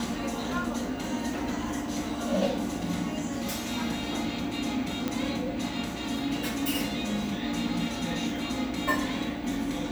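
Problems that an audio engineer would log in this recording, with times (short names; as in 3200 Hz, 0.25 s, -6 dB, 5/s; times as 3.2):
5.08 pop -15 dBFS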